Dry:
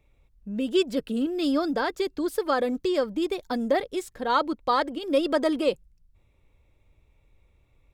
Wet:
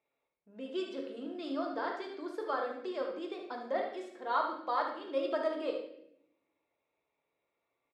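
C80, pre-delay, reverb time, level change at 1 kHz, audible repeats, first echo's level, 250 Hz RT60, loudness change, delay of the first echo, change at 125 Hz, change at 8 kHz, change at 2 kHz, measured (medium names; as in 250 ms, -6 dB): 8.0 dB, 3 ms, 0.75 s, -7.0 dB, 1, -8.0 dB, 1.2 s, -10.0 dB, 73 ms, no reading, under -20 dB, -9.0 dB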